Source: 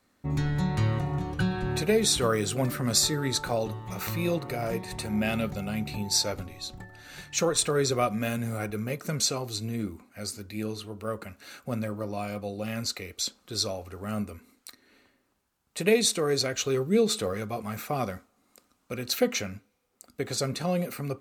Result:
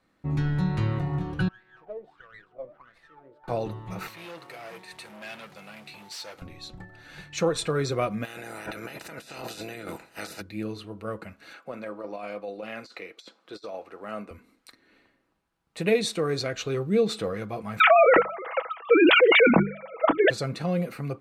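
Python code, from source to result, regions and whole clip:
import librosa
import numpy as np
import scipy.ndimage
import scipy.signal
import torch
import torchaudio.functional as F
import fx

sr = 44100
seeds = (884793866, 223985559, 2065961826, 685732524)

y = fx.chain(x, sr, fx.high_shelf(hz=2600.0, db=-12.0),
    fx.wah_lfo(hz=1.5, low_hz=540.0, high_hz=2100.0, q=12.0),
    fx.running_max(window=5), at=(1.48, 3.48))
y = fx.chain(y, sr, fx.clip_hard(threshold_db=-30.0),
    fx.quant_float(bits=2),
    fx.highpass(hz=1400.0, slope=6), at=(4.07, 6.42))
y = fx.spec_clip(y, sr, under_db=26, at=(8.24, 10.4), fade=0.02)
y = fx.over_compress(y, sr, threshold_db=-38.0, ratio=-1.0, at=(8.24, 10.4), fade=0.02)
y = fx.notch_comb(y, sr, f0_hz=1100.0, at=(8.24, 10.4), fade=0.02)
y = fx.chain(y, sr, fx.highpass(hz=380.0, slope=12),
    fx.over_compress(threshold_db=-35.0, ratio=-0.5),
    fx.high_shelf(hz=6000.0, db=-10.5), at=(11.53, 14.31))
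y = fx.chain(y, sr, fx.sine_speech(),
    fx.hum_notches(base_hz=50, count=4),
    fx.env_flatten(amount_pct=100), at=(17.8, 20.3))
y = scipy.signal.sosfilt(scipy.signal.butter(2, 8700.0, 'lowpass', fs=sr, output='sos'), y)
y = fx.peak_eq(y, sr, hz=6900.0, db=-9.0, octaves=1.3)
y = y + 0.33 * np.pad(y, (int(6.1 * sr / 1000.0), 0))[:len(y)]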